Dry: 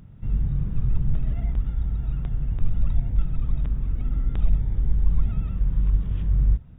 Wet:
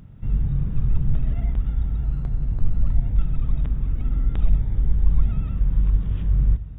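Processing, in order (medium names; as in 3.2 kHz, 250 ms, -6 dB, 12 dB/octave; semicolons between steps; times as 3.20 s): on a send at -16 dB: reverberation RT60 2.3 s, pre-delay 4 ms; 2.04–3.02 s: on the sum: decimation joined by straight lines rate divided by 8×; trim +2 dB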